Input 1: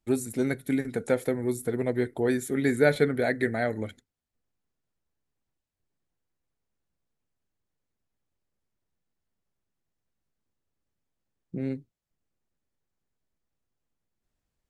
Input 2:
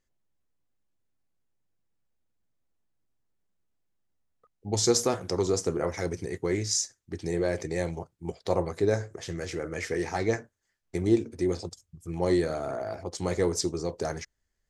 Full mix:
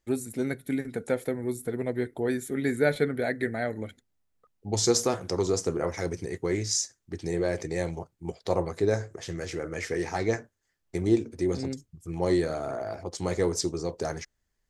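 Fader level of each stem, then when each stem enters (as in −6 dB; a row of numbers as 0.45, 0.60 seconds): −2.5, 0.0 decibels; 0.00, 0.00 seconds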